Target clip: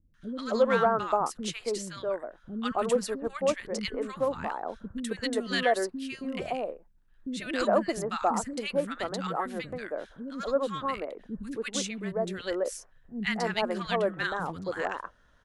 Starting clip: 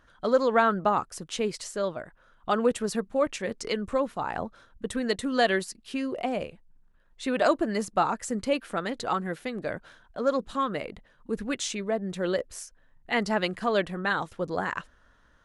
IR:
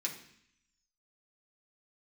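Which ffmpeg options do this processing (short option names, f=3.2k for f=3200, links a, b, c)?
-filter_complex "[0:a]aeval=exprs='0.335*(cos(1*acos(clip(val(0)/0.335,-1,1)))-cos(1*PI/2))+0.00422*(cos(7*acos(clip(val(0)/0.335,-1,1)))-cos(7*PI/2))':c=same,acrossover=split=280|1300[a][b][c];[c]adelay=140[d];[b]adelay=270[e];[a][e][d]amix=inputs=3:normalize=0,asoftclip=type=hard:threshold=-12.5dB"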